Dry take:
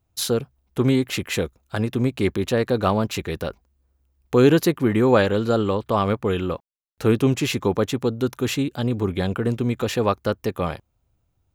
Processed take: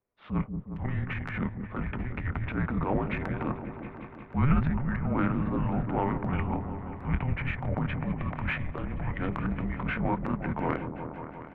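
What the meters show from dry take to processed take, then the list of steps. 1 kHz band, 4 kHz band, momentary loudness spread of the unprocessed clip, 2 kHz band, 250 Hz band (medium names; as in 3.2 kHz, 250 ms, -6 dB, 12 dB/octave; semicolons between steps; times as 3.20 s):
-6.0 dB, -20.5 dB, 10 LU, -5.0 dB, -8.5 dB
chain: gain riding within 5 dB 0.5 s; mistuned SSB -280 Hz 330–2400 Hz; doubling 25 ms -9.5 dB; transient shaper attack -9 dB, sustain +10 dB; delay with an opening low-pass 179 ms, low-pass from 400 Hz, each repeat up 1 oct, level -6 dB; trim -6.5 dB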